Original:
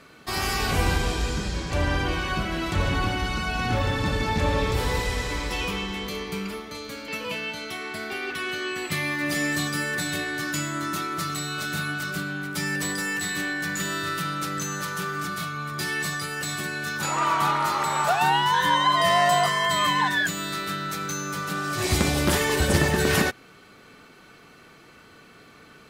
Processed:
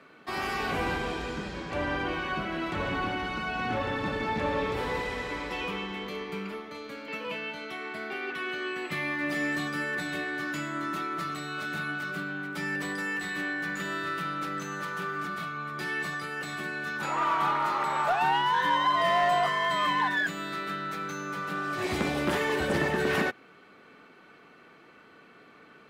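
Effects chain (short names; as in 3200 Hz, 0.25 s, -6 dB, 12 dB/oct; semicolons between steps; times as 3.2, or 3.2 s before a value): three-band isolator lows -14 dB, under 170 Hz, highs -14 dB, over 3200 Hz; in parallel at -5 dB: overloaded stage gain 21.5 dB; on the sum: gain -6.5 dB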